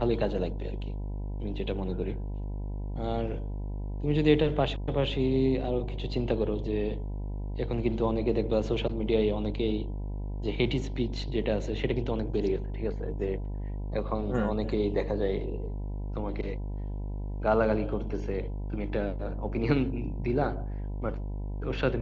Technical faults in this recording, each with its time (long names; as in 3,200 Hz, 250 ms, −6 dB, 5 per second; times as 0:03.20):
mains buzz 50 Hz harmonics 20 −34 dBFS